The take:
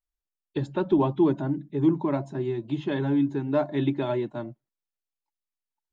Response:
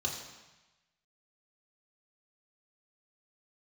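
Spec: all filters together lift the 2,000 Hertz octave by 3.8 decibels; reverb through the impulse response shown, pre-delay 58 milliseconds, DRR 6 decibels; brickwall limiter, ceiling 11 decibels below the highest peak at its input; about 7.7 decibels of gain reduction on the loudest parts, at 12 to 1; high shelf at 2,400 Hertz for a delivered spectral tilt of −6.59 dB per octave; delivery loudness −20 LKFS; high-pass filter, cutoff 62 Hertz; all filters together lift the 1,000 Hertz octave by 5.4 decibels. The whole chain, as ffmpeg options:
-filter_complex "[0:a]highpass=62,equalizer=frequency=1000:width_type=o:gain=6,equalizer=frequency=2000:width_type=o:gain=4,highshelf=frequency=2400:gain=-3,acompressor=threshold=-23dB:ratio=12,alimiter=limit=-24dB:level=0:latency=1,asplit=2[link_01][link_02];[1:a]atrim=start_sample=2205,adelay=58[link_03];[link_02][link_03]afir=irnorm=-1:irlink=0,volume=-10dB[link_04];[link_01][link_04]amix=inputs=2:normalize=0,volume=11.5dB"

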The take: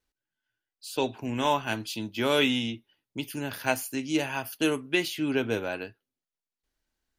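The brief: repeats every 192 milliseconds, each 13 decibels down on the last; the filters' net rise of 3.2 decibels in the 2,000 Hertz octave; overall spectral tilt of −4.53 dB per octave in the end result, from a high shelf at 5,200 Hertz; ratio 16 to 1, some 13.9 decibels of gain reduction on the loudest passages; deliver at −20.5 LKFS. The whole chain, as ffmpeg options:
ffmpeg -i in.wav -af "equalizer=frequency=2000:width_type=o:gain=6,highshelf=frequency=5200:gain=-8.5,acompressor=threshold=-32dB:ratio=16,aecho=1:1:192|384|576:0.224|0.0493|0.0108,volume=17dB" out.wav

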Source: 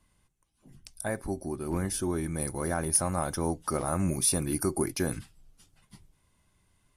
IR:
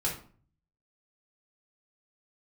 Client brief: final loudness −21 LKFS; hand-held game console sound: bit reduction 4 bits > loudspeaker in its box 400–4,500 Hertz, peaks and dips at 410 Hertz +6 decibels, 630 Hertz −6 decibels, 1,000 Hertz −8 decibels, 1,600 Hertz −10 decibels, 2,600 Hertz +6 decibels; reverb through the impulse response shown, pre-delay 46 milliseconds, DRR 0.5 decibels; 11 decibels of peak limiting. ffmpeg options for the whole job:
-filter_complex "[0:a]alimiter=limit=-23.5dB:level=0:latency=1,asplit=2[link_01][link_02];[1:a]atrim=start_sample=2205,adelay=46[link_03];[link_02][link_03]afir=irnorm=-1:irlink=0,volume=-6.5dB[link_04];[link_01][link_04]amix=inputs=2:normalize=0,acrusher=bits=3:mix=0:aa=0.000001,highpass=400,equalizer=frequency=410:width_type=q:width=4:gain=6,equalizer=frequency=630:width_type=q:width=4:gain=-6,equalizer=frequency=1000:width_type=q:width=4:gain=-8,equalizer=frequency=1600:width_type=q:width=4:gain=-10,equalizer=frequency=2600:width_type=q:width=4:gain=6,lowpass=frequency=4500:width=0.5412,lowpass=frequency=4500:width=1.3066,volume=14.5dB"

